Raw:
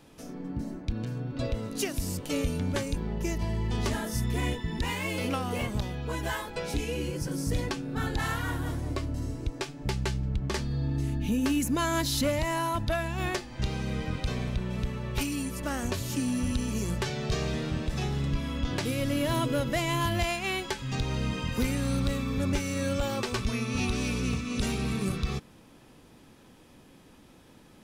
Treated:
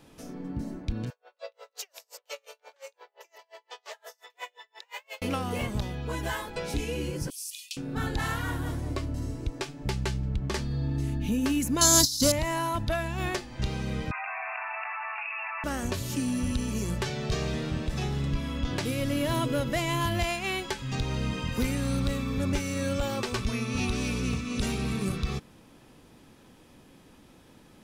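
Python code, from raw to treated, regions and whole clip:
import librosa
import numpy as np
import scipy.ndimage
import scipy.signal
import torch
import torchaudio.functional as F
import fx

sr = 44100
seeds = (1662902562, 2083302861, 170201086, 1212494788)

y = fx.chain(x, sr, fx.steep_highpass(hz=500.0, slope=48),
    fx.peak_eq(hz=10000.0, db=-14.5, octaves=0.4),
    fx.tremolo_db(hz=5.7, depth_db=39), at=(1.1, 5.22))
y = fx.chain(y, sr, fx.cheby1_highpass(hz=2500.0, order=6),
    fx.high_shelf(hz=9200.0, db=8.5), at=(7.3, 7.77))
y = fx.chain(y, sr, fx.high_shelf_res(hz=3500.0, db=13.5, q=3.0),
    fx.over_compress(threshold_db=-21.0, ratio=-0.5), at=(11.81, 12.32))
y = fx.chain(y, sr, fx.brickwall_bandpass(low_hz=640.0, high_hz=2800.0),
    fx.env_flatten(amount_pct=100), at=(14.11, 15.64))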